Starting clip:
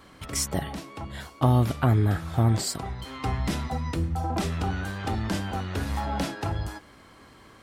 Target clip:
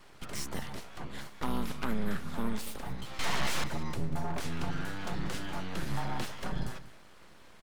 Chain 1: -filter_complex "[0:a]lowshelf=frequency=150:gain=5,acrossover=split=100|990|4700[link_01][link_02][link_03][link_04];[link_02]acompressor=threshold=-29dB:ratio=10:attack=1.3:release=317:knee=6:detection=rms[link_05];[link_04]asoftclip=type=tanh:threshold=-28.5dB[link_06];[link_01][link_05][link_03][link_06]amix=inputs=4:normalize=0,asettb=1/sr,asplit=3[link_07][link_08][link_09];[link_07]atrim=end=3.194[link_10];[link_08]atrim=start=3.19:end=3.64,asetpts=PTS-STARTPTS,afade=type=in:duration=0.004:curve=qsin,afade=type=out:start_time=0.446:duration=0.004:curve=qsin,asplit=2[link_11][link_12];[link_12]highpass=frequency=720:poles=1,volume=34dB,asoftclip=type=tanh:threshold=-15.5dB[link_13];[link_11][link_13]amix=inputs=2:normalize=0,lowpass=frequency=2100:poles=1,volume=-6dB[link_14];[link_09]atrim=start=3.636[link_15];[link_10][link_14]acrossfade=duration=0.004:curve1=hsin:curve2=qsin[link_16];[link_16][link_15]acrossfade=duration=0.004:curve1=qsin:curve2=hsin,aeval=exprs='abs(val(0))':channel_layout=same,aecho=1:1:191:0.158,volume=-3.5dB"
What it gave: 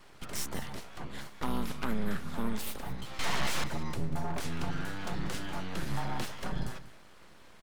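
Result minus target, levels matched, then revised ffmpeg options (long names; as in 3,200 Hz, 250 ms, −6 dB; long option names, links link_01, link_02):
soft clipping: distortion −8 dB
-filter_complex "[0:a]lowshelf=frequency=150:gain=5,acrossover=split=100|990|4700[link_01][link_02][link_03][link_04];[link_02]acompressor=threshold=-29dB:ratio=10:attack=1.3:release=317:knee=6:detection=rms[link_05];[link_04]asoftclip=type=tanh:threshold=-39dB[link_06];[link_01][link_05][link_03][link_06]amix=inputs=4:normalize=0,asettb=1/sr,asplit=3[link_07][link_08][link_09];[link_07]atrim=end=3.194[link_10];[link_08]atrim=start=3.19:end=3.64,asetpts=PTS-STARTPTS,afade=type=in:duration=0.004:curve=qsin,afade=type=out:start_time=0.446:duration=0.004:curve=qsin,asplit=2[link_11][link_12];[link_12]highpass=frequency=720:poles=1,volume=34dB,asoftclip=type=tanh:threshold=-15.5dB[link_13];[link_11][link_13]amix=inputs=2:normalize=0,lowpass=frequency=2100:poles=1,volume=-6dB[link_14];[link_09]atrim=start=3.636[link_15];[link_10][link_14]acrossfade=duration=0.004:curve1=hsin:curve2=qsin[link_16];[link_16][link_15]acrossfade=duration=0.004:curve1=qsin:curve2=hsin,aeval=exprs='abs(val(0))':channel_layout=same,aecho=1:1:191:0.158,volume=-3.5dB"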